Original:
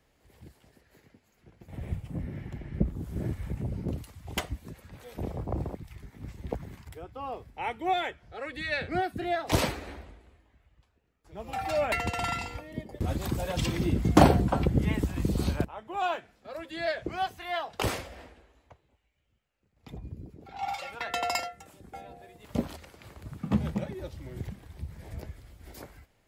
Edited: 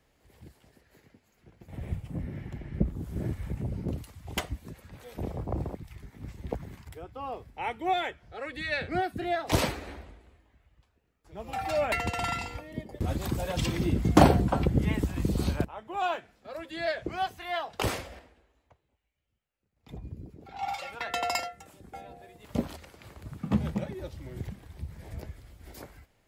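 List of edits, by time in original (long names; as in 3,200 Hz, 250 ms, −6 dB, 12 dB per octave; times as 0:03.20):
0:18.19–0:19.89: clip gain −7 dB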